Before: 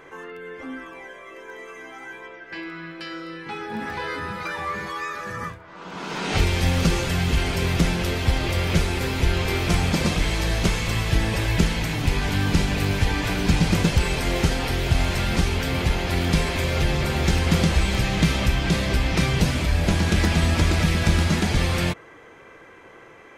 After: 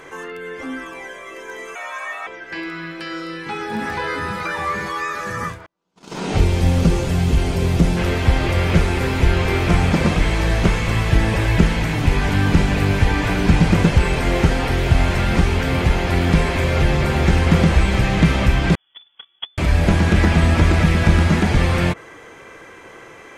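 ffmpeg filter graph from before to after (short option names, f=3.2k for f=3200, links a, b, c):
-filter_complex "[0:a]asettb=1/sr,asplit=3[a][b][c];[a]atrim=end=1.754[d];[b]atrim=start=1.75:end=2.27,asetpts=PTS-STARTPTS,afade=t=in:d=0.004:c=qsin,afade=t=out:st=0.516:d=0.004:c=qsin,equalizer=f=930:t=o:w=1.3:g=8,afreqshift=270[e];[c]atrim=start=2.266[f];[d][e]acrossfade=d=0.004:c1=hsin:c2=qsin[g];[g][f]acrossfade=d=0.004:c1=qsin:c2=hsin,asettb=1/sr,asplit=3[h][i][j];[h]atrim=end=5.664[k];[i]atrim=start=5.66:end=7.97,asetpts=PTS-STARTPTS,afade=t=in:d=0.004:c=qsin,afade=t=out:st=2.306:d=0.004:c=qsin,agate=range=-41dB:threshold=-31dB:ratio=16:release=100:detection=peak,equalizer=f=1.7k:t=o:w=1.9:g=-8.5[l];[j]atrim=start=7.966[m];[k][l]acrossfade=d=0.004:c1=hsin:c2=qsin[n];[n][m]acrossfade=d=0.004:c1=qsin:c2=hsin,asettb=1/sr,asplit=3[o][p][q];[o]atrim=end=18.754[r];[p]atrim=start=18.75:end=19.58,asetpts=PTS-STARTPTS,afade=t=in:d=0.004:c=qsin,afade=t=out:st=0.826:d=0.004:c=qsin,agate=range=-49dB:threshold=-15dB:ratio=16:release=100:detection=peak,lowpass=f=3k:t=q:w=0.5098,lowpass=f=3k:t=q:w=0.6013,lowpass=f=3k:t=q:w=0.9,lowpass=f=3k:t=q:w=2.563,afreqshift=-3500[s];[q]atrim=start=19.576[t];[r][s]acrossfade=d=0.004:c1=hsin:c2=qsin[u];[u][t]acrossfade=d=0.004:c1=qsin:c2=hsin,equalizer=f=8.3k:w=0.56:g=7.5,acrossover=split=2500[v][w];[w]acompressor=threshold=-43dB:ratio=4:attack=1:release=60[x];[v][x]amix=inputs=2:normalize=0,volume=5.5dB"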